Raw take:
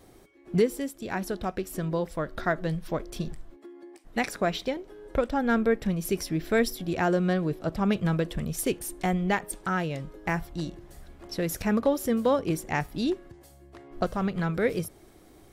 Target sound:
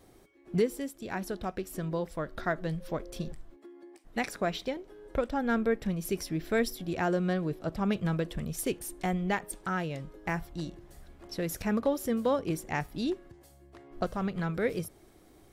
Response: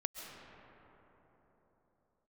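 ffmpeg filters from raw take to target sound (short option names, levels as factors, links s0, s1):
-filter_complex "[0:a]asettb=1/sr,asplit=3[s0][s1][s2];[s0]atrim=end=2.804[s3];[s1]atrim=start=2.8:end=3.32,asetpts=PTS-STARTPTS,afade=t=in:d=0.004:c=qsin,afade=t=out:st=0.516:d=0.004:c=qsin,aeval=exprs='val(0)+0.00631*sin(2*PI*530*n/s)':c=same[s4];[s2]atrim=start=3.316[s5];[s3][s4]acrossfade=d=0.004:c1=hsin:c2=qsin[s6];[s6][s5]acrossfade=d=0.004:c1=qsin:c2=hsin,volume=0.631"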